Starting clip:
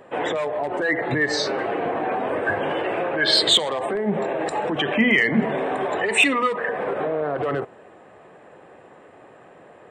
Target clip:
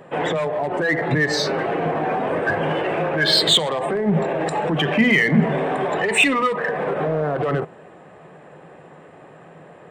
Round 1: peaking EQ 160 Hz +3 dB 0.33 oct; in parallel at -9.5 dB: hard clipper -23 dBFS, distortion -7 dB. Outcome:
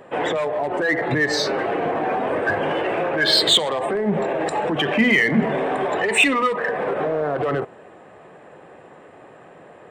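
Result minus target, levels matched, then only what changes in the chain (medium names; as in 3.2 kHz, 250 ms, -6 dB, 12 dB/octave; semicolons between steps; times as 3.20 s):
125 Hz band -5.5 dB
change: peaking EQ 160 Hz +13 dB 0.33 oct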